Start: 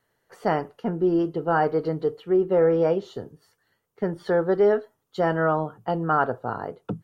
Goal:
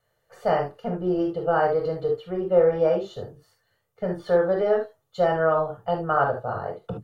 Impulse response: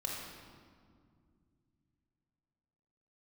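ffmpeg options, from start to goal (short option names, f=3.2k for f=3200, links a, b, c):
-filter_complex "[0:a]equalizer=f=280:t=o:w=0.29:g=-10[a];[1:a]atrim=start_sample=2205,atrim=end_sample=3528[b];[a][b]afir=irnorm=-1:irlink=0"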